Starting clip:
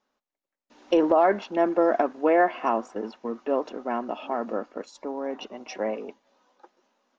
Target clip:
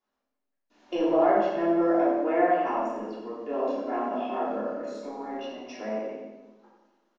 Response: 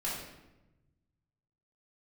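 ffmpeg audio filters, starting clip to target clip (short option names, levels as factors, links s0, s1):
-filter_complex "[0:a]asettb=1/sr,asplit=3[s0][s1][s2];[s0]atrim=end=3.404[s3];[s1]atrim=start=3.4:end=5.45,asetpts=PTS-STARTPTS,afade=t=in:d=0.004:c=qsin,afade=t=out:st=2.046:d=0.004:c=qsin,asplit=2[s4][s5];[s5]adelay=28,volume=0.794[s6];[s4][s6]amix=inputs=2:normalize=0,atrim=end_sample=90405[s7];[s2]atrim=start=5.446[s8];[s3][s7]acrossfade=d=0.004:c1=hsin:c2=qsin[s9];[s9][s8]acrossfade=d=0.004:c1=qsin:c2=hsin,aecho=1:1:89|178|267|356|445|534:0.355|0.192|0.103|0.0559|0.0302|0.0163[s10];[1:a]atrim=start_sample=2205[s11];[s10][s11]afir=irnorm=-1:irlink=0,volume=0.376"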